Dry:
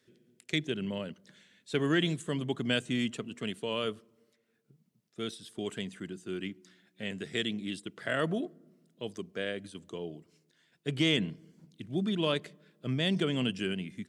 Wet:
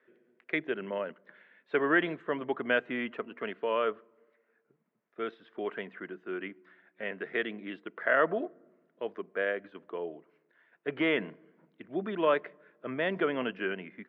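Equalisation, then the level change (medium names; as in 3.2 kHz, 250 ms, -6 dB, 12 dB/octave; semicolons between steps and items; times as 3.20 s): high-pass 530 Hz 12 dB/octave; low-pass 1.9 kHz 24 dB/octave; band-stop 780 Hz, Q 19; +8.5 dB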